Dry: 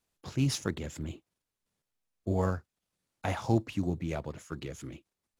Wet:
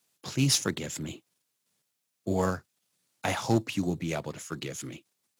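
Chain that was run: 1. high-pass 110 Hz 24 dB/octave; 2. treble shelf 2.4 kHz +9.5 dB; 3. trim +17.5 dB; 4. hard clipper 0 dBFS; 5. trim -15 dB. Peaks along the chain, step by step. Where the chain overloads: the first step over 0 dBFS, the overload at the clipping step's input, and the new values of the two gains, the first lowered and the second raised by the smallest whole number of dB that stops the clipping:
-15.0 dBFS, -13.5 dBFS, +4.0 dBFS, 0.0 dBFS, -15.0 dBFS; step 3, 4.0 dB; step 3 +13.5 dB, step 5 -11 dB

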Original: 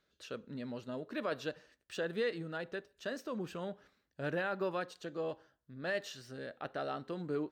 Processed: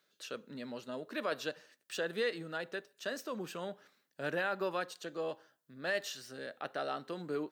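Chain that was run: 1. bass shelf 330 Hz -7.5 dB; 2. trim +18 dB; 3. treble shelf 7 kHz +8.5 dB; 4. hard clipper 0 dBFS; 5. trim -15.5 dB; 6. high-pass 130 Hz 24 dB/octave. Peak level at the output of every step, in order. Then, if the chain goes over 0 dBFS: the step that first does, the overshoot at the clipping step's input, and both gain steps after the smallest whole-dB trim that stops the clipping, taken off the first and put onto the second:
-25.0 dBFS, -7.0 dBFS, -6.0 dBFS, -6.0 dBFS, -21.5 dBFS, -20.5 dBFS; nothing clips

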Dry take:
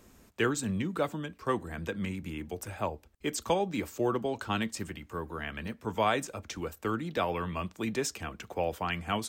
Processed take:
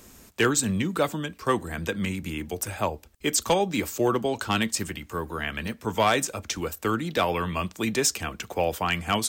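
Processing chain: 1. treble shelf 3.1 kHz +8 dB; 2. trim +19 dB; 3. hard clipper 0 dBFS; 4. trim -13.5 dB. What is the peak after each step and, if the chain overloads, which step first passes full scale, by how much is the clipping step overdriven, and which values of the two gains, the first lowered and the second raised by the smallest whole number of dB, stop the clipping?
-13.0 dBFS, +6.0 dBFS, 0.0 dBFS, -13.5 dBFS; step 2, 6.0 dB; step 2 +13 dB, step 4 -7.5 dB

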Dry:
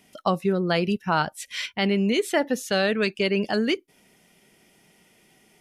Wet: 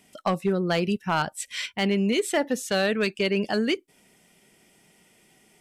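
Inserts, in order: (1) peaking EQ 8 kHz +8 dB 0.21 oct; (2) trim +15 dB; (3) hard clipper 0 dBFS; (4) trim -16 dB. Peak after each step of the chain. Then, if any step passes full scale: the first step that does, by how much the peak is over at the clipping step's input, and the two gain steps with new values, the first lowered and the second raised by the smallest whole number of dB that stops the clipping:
-9.0 dBFS, +6.0 dBFS, 0.0 dBFS, -16.0 dBFS; step 2, 6.0 dB; step 2 +9 dB, step 4 -10 dB

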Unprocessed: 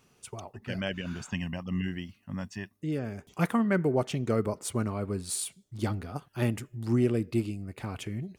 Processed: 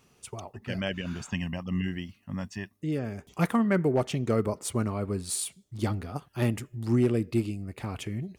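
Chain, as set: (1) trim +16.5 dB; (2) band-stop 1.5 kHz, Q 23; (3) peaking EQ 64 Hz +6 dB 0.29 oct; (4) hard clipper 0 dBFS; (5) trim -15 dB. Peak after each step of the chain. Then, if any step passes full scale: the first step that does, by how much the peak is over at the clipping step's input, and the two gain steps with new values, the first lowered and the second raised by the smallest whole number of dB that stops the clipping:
+3.0 dBFS, +3.0 dBFS, +3.0 dBFS, 0.0 dBFS, -15.0 dBFS; step 1, 3.0 dB; step 1 +13.5 dB, step 5 -12 dB

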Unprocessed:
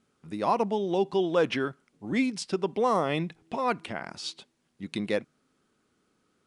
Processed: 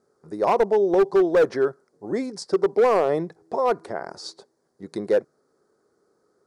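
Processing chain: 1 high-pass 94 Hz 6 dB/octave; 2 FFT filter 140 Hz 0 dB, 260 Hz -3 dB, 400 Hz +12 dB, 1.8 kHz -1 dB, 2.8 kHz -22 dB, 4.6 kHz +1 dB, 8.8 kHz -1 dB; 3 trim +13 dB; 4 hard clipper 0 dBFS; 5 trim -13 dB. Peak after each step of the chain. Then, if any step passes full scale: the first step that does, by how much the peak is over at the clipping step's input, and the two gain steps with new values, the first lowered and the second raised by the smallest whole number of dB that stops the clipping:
-12.5 dBFS, -5.5 dBFS, +7.5 dBFS, 0.0 dBFS, -13.0 dBFS; step 3, 7.5 dB; step 3 +5 dB, step 5 -5 dB

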